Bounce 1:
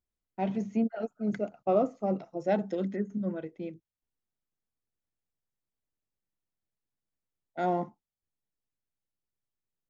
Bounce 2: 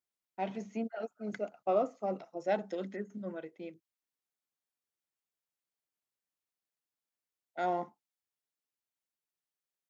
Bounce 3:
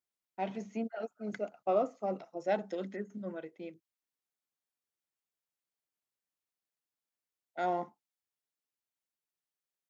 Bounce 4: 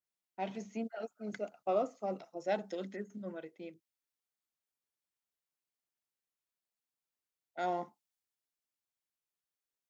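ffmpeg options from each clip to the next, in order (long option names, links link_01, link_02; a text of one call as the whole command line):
ffmpeg -i in.wav -af "highpass=frequency=630:poles=1" out.wav
ffmpeg -i in.wav -af anull out.wav
ffmpeg -i in.wav -af "adynamicequalizer=threshold=0.00224:dfrequency=2900:dqfactor=0.7:tfrequency=2900:tqfactor=0.7:attack=5:release=100:ratio=0.375:range=3:mode=boostabove:tftype=highshelf,volume=-2.5dB" out.wav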